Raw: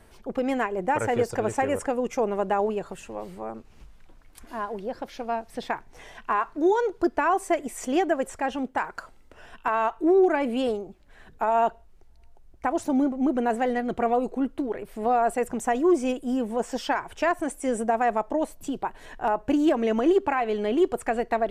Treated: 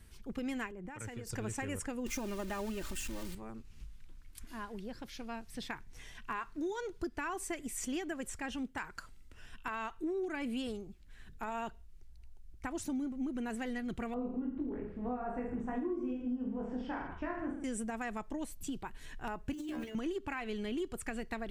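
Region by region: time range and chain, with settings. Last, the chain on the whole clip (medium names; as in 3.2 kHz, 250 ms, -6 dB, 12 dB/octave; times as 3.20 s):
0.71–1.27 s: compression 5:1, threshold -31 dBFS + three bands expanded up and down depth 70%
2.06–3.35 s: jump at every zero crossing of -36.5 dBFS + comb 3.3 ms, depth 73%
14.14–17.64 s: low-pass 1.1 kHz + reverse bouncing-ball echo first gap 20 ms, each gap 1.2×, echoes 6, each echo -2 dB
19.53–19.95 s: companding laws mixed up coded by A + inharmonic resonator 60 Hz, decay 0.44 s, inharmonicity 0.002 + transient shaper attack -9 dB, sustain +10 dB
whole clip: amplifier tone stack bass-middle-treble 6-0-2; compression, threshold -46 dBFS; trim +12.5 dB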